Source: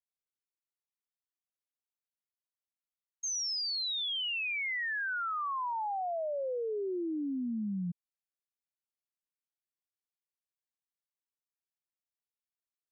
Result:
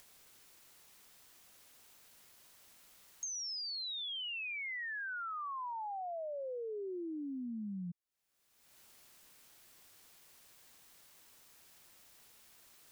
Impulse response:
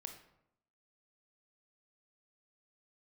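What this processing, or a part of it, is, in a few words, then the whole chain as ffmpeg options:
upward and downward compression: -af "acompressor=mode=upward:threshold=-47dB:ratio=2.5,acompressor=threshold=-49dB:ratio=5,volume=7dB"

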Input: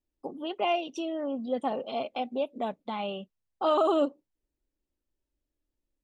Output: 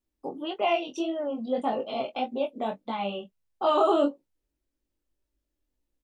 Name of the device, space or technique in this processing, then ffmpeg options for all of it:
double-tracked vocal: -filter_complex "[0:a]asplit=2[link_01][link_02];[link_02]adelay=21,volume=-12.5dB[link_03];[link_01][link_03]amix=inputs=2:normalize=0,flanger=delay=17.5:depth=5.9:speed=1.7,volume=5dB"

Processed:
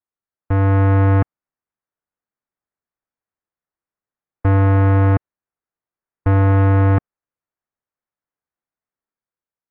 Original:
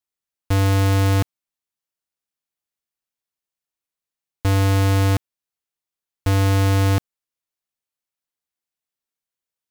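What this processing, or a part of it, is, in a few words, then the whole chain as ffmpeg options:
action camera in a waterproof case: -af "lowpass=frequency=1800:width=0.5412,lowpass=frequency=1800:width=1.3066,dynaudnorm=framelen=130:gausssize=9:maxgain=4dB" -ar 22050 -c:a aac -b:a 48k

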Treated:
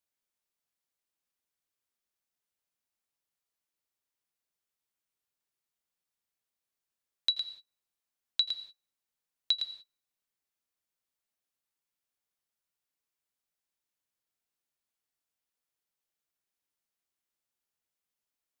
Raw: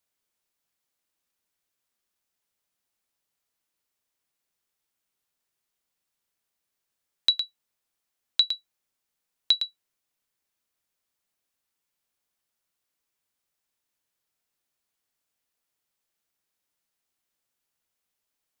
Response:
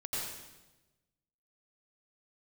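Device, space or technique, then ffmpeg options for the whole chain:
keyed gated reverb: -filter_complex "[0:a]asplit=3[link_01][link_02][link_03];[1:a]atrim=start_sample=2205[link_04];[link_02][link_04]afir=irnorm=-1:irlink=0[link_05];[link_03]apad=whole_len=820298[link_06];[link_05][link_06]sidechaingate=range=-33dB:threshold=-49dB:ratio=16:detection=peak,volume=-13.5dB[link_07];[link_01][link_07]amix=inputs=2:normalize=0,volume=-7.5dB"

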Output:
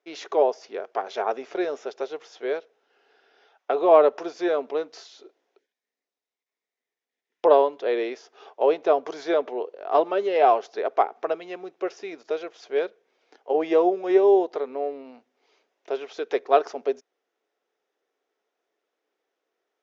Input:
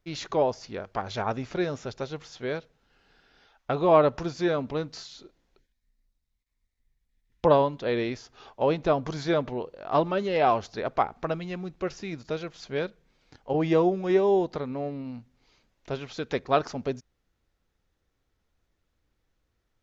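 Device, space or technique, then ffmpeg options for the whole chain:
phone speaker on a table: -af "highpass=frequency=340:width=0.5412,highpass=frequency=340:width=1.3066,equalizer=frequency=420:width_type=q:width=4:gain=8,equalizer=frequency=700:width_type=q:width=4:gain=6,equalizer=frequency=4300:width_type=q:width=4:gain=-6,lowpass=frequency=6400:width=0.5412,lowpass=frequency=6400:width=1.3066"

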